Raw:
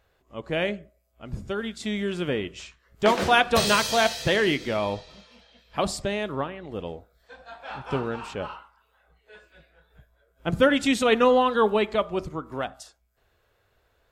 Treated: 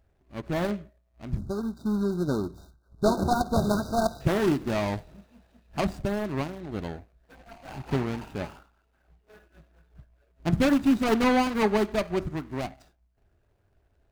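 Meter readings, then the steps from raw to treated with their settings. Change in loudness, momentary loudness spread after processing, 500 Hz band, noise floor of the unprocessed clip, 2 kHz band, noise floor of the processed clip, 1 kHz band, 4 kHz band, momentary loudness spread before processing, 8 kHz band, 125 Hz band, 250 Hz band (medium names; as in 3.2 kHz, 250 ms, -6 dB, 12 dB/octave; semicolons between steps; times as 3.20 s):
-3.0 dB, 15 LU, -4.0 dB, -68 dBFS, -8.0 dB, -69 dBFS, -4.5 dB, -10.5 dB, 19 LU, -8.0 dB, +3.5 dB, +2.5 dB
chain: median filter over 41 samples; spectral selection erased 1.39–4.21 s, 1.6–3.6 kHz; peaking EQ 490 Hz -11 dB 0.36 oct; trim +4 dB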